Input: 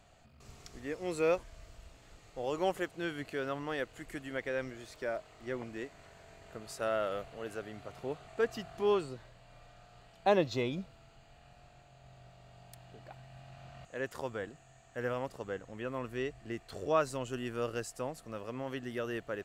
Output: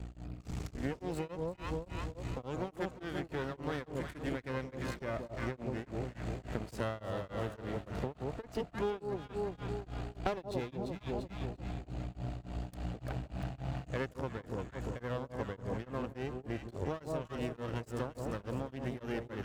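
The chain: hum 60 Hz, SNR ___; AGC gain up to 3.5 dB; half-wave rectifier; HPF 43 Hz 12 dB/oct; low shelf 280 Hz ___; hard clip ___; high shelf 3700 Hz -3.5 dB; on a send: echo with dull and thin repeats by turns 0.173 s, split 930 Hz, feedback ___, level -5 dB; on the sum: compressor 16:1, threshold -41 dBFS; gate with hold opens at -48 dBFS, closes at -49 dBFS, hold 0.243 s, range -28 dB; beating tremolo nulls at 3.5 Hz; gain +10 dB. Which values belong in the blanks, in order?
15 dB, +8 dB, -17.5 dBFS, 63%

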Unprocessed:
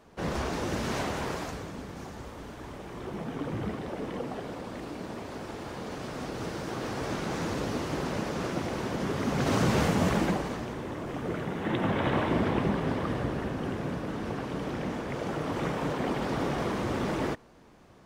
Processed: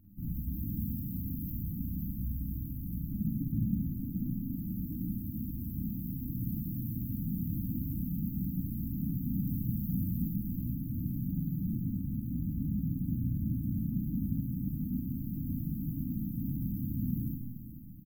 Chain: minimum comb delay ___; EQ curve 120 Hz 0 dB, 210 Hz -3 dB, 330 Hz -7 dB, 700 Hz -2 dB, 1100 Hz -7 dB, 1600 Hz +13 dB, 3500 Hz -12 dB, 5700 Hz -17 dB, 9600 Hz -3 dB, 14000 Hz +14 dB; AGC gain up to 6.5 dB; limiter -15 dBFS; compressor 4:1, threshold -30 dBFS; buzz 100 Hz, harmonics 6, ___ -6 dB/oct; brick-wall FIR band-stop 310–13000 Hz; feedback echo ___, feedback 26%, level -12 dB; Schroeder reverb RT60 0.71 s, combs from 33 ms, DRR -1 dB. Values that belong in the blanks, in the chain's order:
0.57 ms, -61 dBFS, 0.43 s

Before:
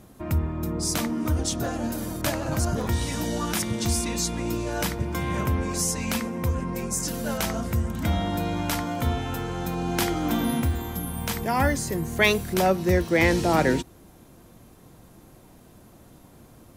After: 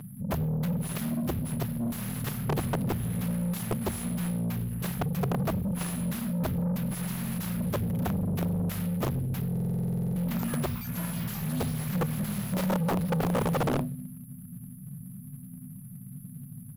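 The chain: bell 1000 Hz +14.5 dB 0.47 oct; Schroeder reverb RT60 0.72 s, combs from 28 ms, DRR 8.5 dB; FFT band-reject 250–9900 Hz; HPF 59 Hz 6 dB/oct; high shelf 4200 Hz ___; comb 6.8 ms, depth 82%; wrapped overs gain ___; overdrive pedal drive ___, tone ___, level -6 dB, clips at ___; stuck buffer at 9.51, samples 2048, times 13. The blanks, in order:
-3 dB, 21.5 dB, 29 dB, 2300 Hz, -21.5 dBFS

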